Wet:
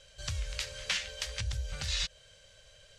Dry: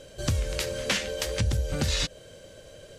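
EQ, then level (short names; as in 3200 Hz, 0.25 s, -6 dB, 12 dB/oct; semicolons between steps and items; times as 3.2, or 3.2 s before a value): air absorption 66 m; passive tone stack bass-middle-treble 10-0-10; 0.0 dB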